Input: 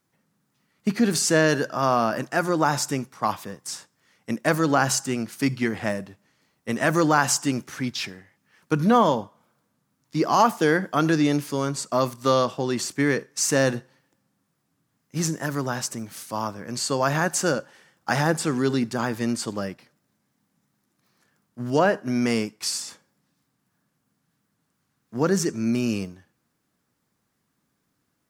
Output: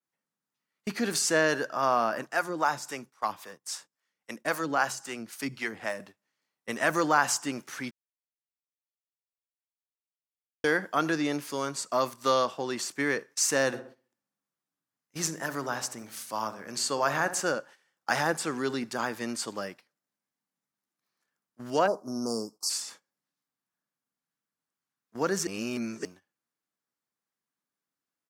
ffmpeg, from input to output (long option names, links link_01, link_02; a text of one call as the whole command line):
ffmpeg -i in.wav -filter_complex "[0:a]asettb=1/sr,asplit=3[link_01][link_02][link_03];[link_01]atrim=end=2.264[link_04];[link_02]atrim=start=2.26:end=6,asetpts=PTS-STARTPTS,afade=type=in:duration=0.004:curve=qsin,afade=type=out:start_time=3.736:duration=0.004:curve=qsin,acrossover=split=420[link_05][link_06];[link_05]aeval=exprs='val(0)*(1-0.7/2+0.7/2*cos(2*PI*3.7*n/s))':channel_layout=same[link_07];[link_06]aeval=exprs='val(0)*(1-0.7/2-0.7/2*cos(2*PI*3.7*n/s))':channel_layout=same[link_08];[link_07][link_08]amix=inputs=2:normalize=0[link_09];[link_03]atrim=start=5.996[link_10];[link_04][link_09]acrossfade=duration=0.004:curve1=hsin:curve2=qsin[link_11];[link_11][link_10]acrossfade=duration=0.004:curve1=qsin:curve2=hsin,asplit=3[link_12][link_13][link_14];[link_12]afade=type=out:start_time=13.72:duration=0.02[link_15];[link_13]asplit=2[link_16][link_17];[link_17]adelay=64,lowpass=frequency=1600:poles=1,volume=-11dB,asplit=2[link_18][link_19];[link_19]adelay=64,lowpass=frequency=1600:poles=1,volume=0.53,asplit=2[link_20][link_21];[link_21]adelay=64,lowpass=frequency=1600:poles=1,volume=0.53,asplit=2[link_22][link_23];[link_23]adelay=64,lowpass=frequency=1600:poles=1,volume=0.53,asplit=2[link_24][link_25];[link_25]adelay=64,lowpass=frequency=1600:poles=1,volume=0.53,asplit=2[link_26][link_27];[link_27]adelay=64,lowpass=frequency=1600:poles=1,volume=0.53[link_28];[link_16][link_18][link_20][link_22][link_24][link_26][link_28]amix=inputs=7:normalize=0,afade=type=in:start_time=13.72:duration=0.02,afade=type=out:start_time=17.41:duration=0.02[link_29];[link_14]afade=type=in:start_time=17.41:duration=0.02[link_30];[link_15][link_29][link_30]amix=inputs=3:normalize=0,asplit=3[link_31][link_32][link_33];[link_31]afade=type=out:start_time=21.86:duration=0.02[link_34];[link_32]asuperstop=centerf=2400:order=12:qfactor=0.71,afade=type=in:start_time=21.86:duration=0.02,afade=type=out:start_time=22.69:duration=0.02[link_35];[link_33]afade=type=in:start_time=22.69:duration=0.02[link_36];[link_34][link_35][link_36]amix=inputs=3:normalize=0,asplit=5[link_37][link_38][link_39][link_40][link_41];[link_37]atrim=end=7.91,asetpts=PTS-STARTPTS,afade=type=out:start_time=7.906:duration=0.004:curve=hsin[link_42];[link_38]atrim=start=7.91:end=10.64,asetpts=PTS-STARTPTS,volume=0[link_43];[link_39]atrim=start=10.64:end=25.472,asetpts=PTS-STARTPTS,afade=type=in:duration=0.004:curve=hsin[link_44];[link_40]atrim=start=25.468:end=26.052,asetpts=PTS-STARTPTS,areverse[link_45];[link_41]atrim=start=26.048[link_46];[link_42][link_43][link_44]concat=n=3:v=0:a=1[link_47];[link_47][link_45]acrossfade=duration=0.004:curve1=hsin:curve2=hsin[link_48];[link_48][link_46]acrossfade=duration=0.004:curve1=hsin:curve2=hsin,highpass=frequency=600:poles=1,agate=range=-13dB:threshold=-46dB:ratio=16:detection=peak,adynamicequalizer=threshold=0.0112:dfrequency=2500:dqfactor=0.7:tfrequency=2500:tqfactor=0.7:attack=5:release=100:ratio=0.375:range=3:mode=cutabove:tftype=highshelf,volume=-1.5dB" out.wav